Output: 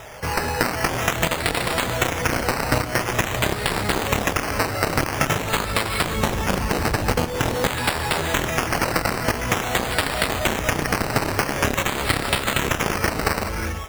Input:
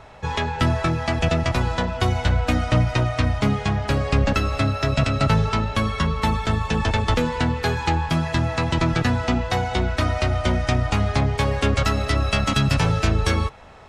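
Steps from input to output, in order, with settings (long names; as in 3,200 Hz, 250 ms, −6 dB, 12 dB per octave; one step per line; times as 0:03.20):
octave-band graphic EQ 125/500/2,000 Hz +3/+7/+11 dB
reverb whose tail is shaped and stops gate 400 ms rising, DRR 8 dB
harmonic generator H 7 −11 dB, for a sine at −1 dBFS
0:06.17–0:07.67: tilt shelving filter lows +4.5 dB, about 840 Hz
sample-and-hold swept by an LFO 10×, swing 60% 0.47 Hz
downward compressor, threshold −17 dBFS, peak gain reduction 10 dB
level +1 dB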